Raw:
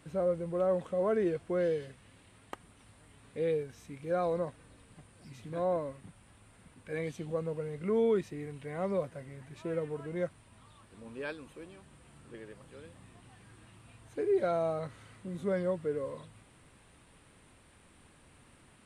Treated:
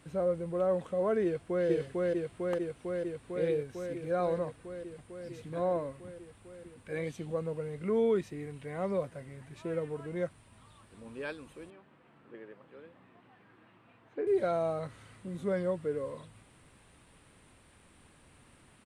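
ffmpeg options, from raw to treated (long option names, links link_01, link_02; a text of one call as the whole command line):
ffmpeg -i in.wav -filter_complex "[0:a]asplit=2[link_01][link_02];[link_02]afade=type=in:start_time=1.24:duration=0.01,afade=type=out:start_time=1.68:duration=0.01,aecho=0:1:450|900|1350|1800|2250|2700|3150|3600|4050|4500|4950|5400:0.944061|0.755249|0.604199|0.483359|0.386687|0.30935|0.24748|0.197984|0.158387|0.12671|0.101368|0.0810942[link_03];[link_01][link_03]amix=inputs=2:normalize=0,asettb=1/sr,asplit=3[link_04][link_05][link_06];[link_04]atrim=end=11.704[link_07];[link_05]atrim=start=11.7:end=14.27,asetpts=PTS-STARTPTS,afade=type=in:duration=0.004:curve=qsin,afade=type=out:start_time=2.566:duration=0.004:curve=qsin,highpass=220,lowpass=2200[link_08];[link_06]atrim=start=14.266[link_09];[link_07][link_08]acrossfade=duration=0.004:curve1=hsin:curve2=qsin[link_10];[link_10][link_09]acrossfade=duration=0.004:curve1=qsin:curve2=hsin" out.wav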